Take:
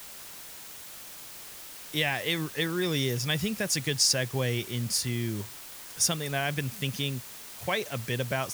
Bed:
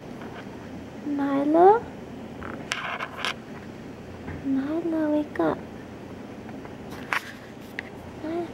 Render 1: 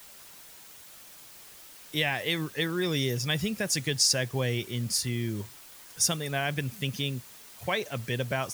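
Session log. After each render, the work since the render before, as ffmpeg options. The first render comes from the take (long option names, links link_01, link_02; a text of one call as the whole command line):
ffmpeg -i in.wav -af "afftdn=noise_reduction=6:noise_floor=-45" out.wav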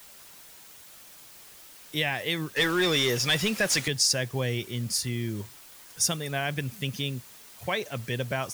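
ffmpeg -i in.wav -filter_complex "[0:a]asettb=1/sr,asplit=3[link_01][link_02][link_03];[link_01]atrim=end=2.564[link_04];[link_02]atrim=start=2.56:end=3.88,asetpts=PTS-STARTPTS,afade=type=in:duration=0.004:curve=qsin,afade=type=out:start_time=1.316:duration=0.004:curve=qsin,asplit=2[link_05][link_06];[link_06]highpass=frequency=720:poles=1,volume=18dB,asoftclip=type=tanh:threshold=-14dB[link_07];[link_05][link_07]amix=inputs=2:normalize=0,lowpass=frequency=5200:poles=1,volume=-6dB[link_08];[link_03]atrim=start=3.876[link_09];[link_04][link_08]acrossfade=duration=0.004:curve1=hsin:curve2=qsin[link_10];[link_10][link_09]acrossfade=duration=0.004:curve1=qsin:curve2=hsin" out.wav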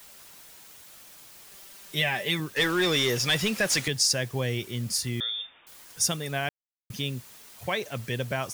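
ffmpeg -i in.wav -filter_complex "[0:a]asettb=1/sr,asplit=3[link_01][link_02][link_03];[link_01]atrim=end=1.514[link_04];[link_02]atrim=start=1.51:end=2.4,asetpts=PTS-STARTPTS,afade=type=in:duration=0.004:curve=qsin,afade=type=out:start_time=0.886:duration=0.004:curve=qsin,aecho=1:1:5.1:0.65,atrim=end_sample=39249[link_05];[link_03]atrim=start=2.396[link_06];[link_04][link_05]acrossfade=duration=0.004:curve1=hsin:curve2=qsin[link_07];[link_07][link_06]acrossfade=duration=0.004:curve1=qsin:curve2=hsin,asettb=1/sr,asplit=3[link_08][link_09][link_10];[link_08]atrim=end=5.204[link_11];[link_09]atrim=start=5.2:end=5.67,asetpts=PTS-STARTPTS,afade=type=in:duration=0.004:curve=qsin,afade=type=out:start_time=0.466:duration=0.004:curve=qsin,lowpass=frequency=3100:width_type=q:width=0.5098,lowpass=frequency=3100:width_type=q:width=0.6013,lowpass=frequency=3100:width_type=q:width=0.9,lowpass=frequency=3100:width_type=q:width=2.563,afreqshift=-3700[link_12];[link_10]atrim=start=5.666[link_13];[link_11][link_12]acrossfade=duration=0.004:curve1=hsin:curve2=qsin[link_14];[link_14][link_13]acrossfade=duration=0.004:curve1=qsin:curve2=hsin,asplit=3[link_15][link_16][link_17];[link_15]atrim=end=6.49,asetpts=PTS-STARTPTS,afade=type=out:start_time=6.486:duration=0.004:curve=hsin[link_18];[link_16]atrim=start=6.49:end=6.9,asetpts=PTS-STARTPTS,volume=0[link_19];[link_17]atrim=start=6.9,asetpts=PTS-STARTPTS,afade=type=in:duration=0.004:curve=hsin[link_20];[link_18][link_19][link_20]concat=n=3:v=0:a=1" out.wav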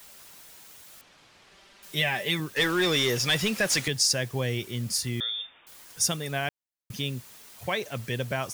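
ffmpeg -i in.wav -filter_complex "[0:a]asettb=1/sr,asplit=3[link_01][link_02][link_03];[link_01]atrim=end=1.014[link_04];[link_02]atrim=start=1.01:end=1.83,asetpts=PTS-STARTPTS,afade=type=in:duration=0.004:curve=qsin,afade=type=out:start_time=0.816:duration=0.004:curve=qsin,lowpass=3800[link_05];[link_03]atrim=start=1.826[link_06];[link_04][link_05]acrossfade=duration=0.004:curve1=hsin:curve2=qsin[link_07];[link_07][link_06]acrossfade=duration=0.004:curve1=qsin:curve2=hsin" out.wav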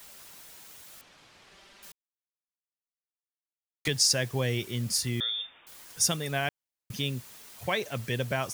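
ffmpeg -i in.wav -filter_complex "[0:a]asplit=3[link_01][link_02][link_03];[link_01]atrim=end=1.92,asetpts=PTS-STARTPTS,afade=type=out:start_time=1.916:duration=0.004:curve=hsin[link_04];[link_02]atrim=start=1.92:end=3.85,asetpts=PTS-STARTPTS,volume=0[link_05];[link_03]atrim=start=3.85,asetpts=PTS-STARTPTS,afade=type=in:duration=0.004:curve=hsin[link_06];[link_04][link_05][link_06]concat=n=3:v=0:a=1" out.wav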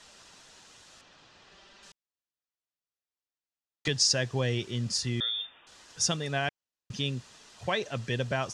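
ffmpeg -i in.wav -af "lowpass=frequency=7100:width=0.5412,lowpass=frequency=7100:width=1.3066,bandreject=frequency=2200:width=10" out.wav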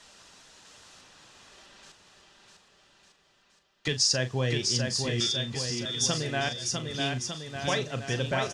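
ffmpeg -i in.wav -filter_complex "[0:a]asplit=2[link_01][link_02];[link_02]adelay=39,volume=-11dB[link_03];[link_01][link_03]amix=inputs=2:normalize=0,aecho=1:1:650|1202|1672|2071|2411:0.631|0.398|0.251|0.158|0.1" out.wav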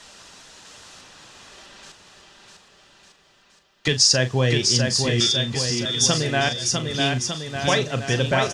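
ffmpeg -i in.wav -af "volume=8dB" out.wav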